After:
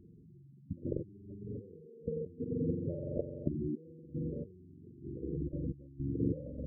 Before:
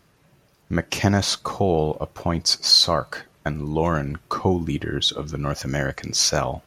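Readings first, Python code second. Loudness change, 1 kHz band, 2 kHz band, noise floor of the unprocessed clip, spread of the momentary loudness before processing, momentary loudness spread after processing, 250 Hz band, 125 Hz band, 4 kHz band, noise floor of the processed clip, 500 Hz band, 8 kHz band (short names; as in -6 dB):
-17.5 dB, under -40 dB, under -40 dB, -60 dBFS, 13 LU, 18 LU, -11.5 dB, -13.0 dB, under -40 dB, -57 dBFS, -15.5 dB, under -40 dB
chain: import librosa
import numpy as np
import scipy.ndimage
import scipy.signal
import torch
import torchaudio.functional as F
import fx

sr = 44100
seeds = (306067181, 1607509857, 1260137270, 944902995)

y = fx.reverse_delay(x, sr, ms=417, wet_db=-13.0)
y = fx.room_flutter(y, sr, wall_m=7.5, rt60_s=1.5)
y = fx.level_steps(y, sr, step_db=21)
y = fx.cheby_harmonics(y, sr, harmonics=(5,), levels_db=(-27,), full_scale_db=-8.5)
y = scipy.signal.sosfilt(scipy.signal.cheby2(4, 40, 1000.0, 'lowpass', fs=sr, output='sos'), y)
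y = fx.low_shelf(y, sr, hz=69.0, db=-4.0)
y = fx.over_compress(y, sr, threshold_db=-35.0, ratio=-0.5)
y = fx.spec_gate(y, sr, threshold_db=-10, keep='strong')
y = y * 10.0 ** (-2.0 / 20.0)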